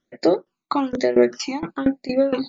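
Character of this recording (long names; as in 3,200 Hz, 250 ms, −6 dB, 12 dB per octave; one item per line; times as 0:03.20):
tremolo saw down 4.3 Hz, depth 90%
phaser sweep stages 12, 1.1 Hz, lowest notch 530–1,100 Hz
MP3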